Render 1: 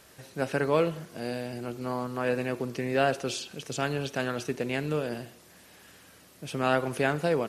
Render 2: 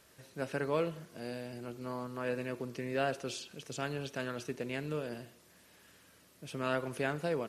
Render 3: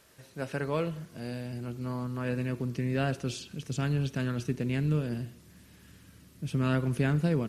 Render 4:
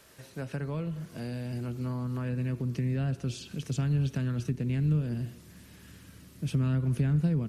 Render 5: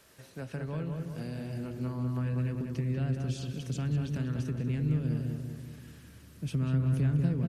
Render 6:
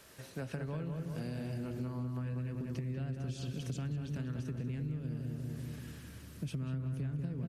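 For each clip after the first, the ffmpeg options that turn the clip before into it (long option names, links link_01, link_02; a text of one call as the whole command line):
ffmpeg -i in.wav -af "bandreject=frequency=770:width=12,volume=-7.5dB" out.wav
ffmpeg -i in.wav -af "asubboost=boost=7:cutoff=220,volume=2dB" out.wav
ffmpeg -i in.wav -filter_complex "[0:a]acrossover=split=210[link_01][link_02];[link_02]acompressor=threshold=-41dB:ratio=10[link_03];[link_01][link_03]amix=inputs=2:normalize=0,volume=3.5dB" out.wav
ffmpeg -i in.wav -filter_complex "[0:a]asplit=2[link_01][link_02];[link_02]adelay=192,lowpass=frequency=2200:poles=1,volume=-4dB,asplit=2[link_03][link_04];[link_04]adelay=192,lowpass=frequency=2200:poles=1,volume=0.54,asplit=2[link_05][link_06];[link_06]adelay=192,lowpass=frequency=2200:poles=1,volume=0.54,asplit=2[link_07][link_08];[link_08]adelay=192,lowpass=frequency=2200:poles=1,volume=0.54,asplit=2[link_09][link_10];[link_10]adelay=192,lowpass=frequency=2200:poles=1,volume=0.54,asplit=2[link_11][link_12];[link_12]adelay=192,lowpass=frequency=2200:poles=1,volume=0.54,asplit=2[link_13][link_14];[link_14]adelay=192,lowpass=frequency=2200:poles=1,volume=0.54[link_15];[link_01][link_03][link_05][link_07][link_09][link_11][link_13][link_15]amix=inputs=8:normalize=0,volume=-3dB" out.wav
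ffmpeg -i in.wav -af "acompressor=threshold=-38dB:ratio=6,volume=2.5dB" out.wav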